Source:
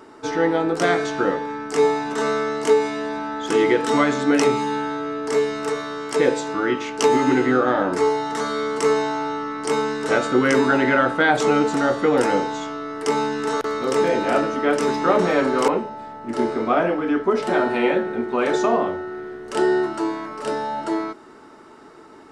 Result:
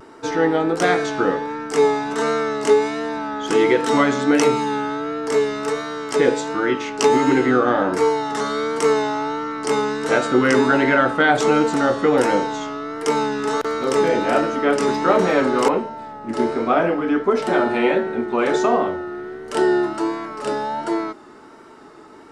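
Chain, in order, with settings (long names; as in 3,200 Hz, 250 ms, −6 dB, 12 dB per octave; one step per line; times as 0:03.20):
pitch vibrato 1.4 Hz 49 cents
level +1.5 dB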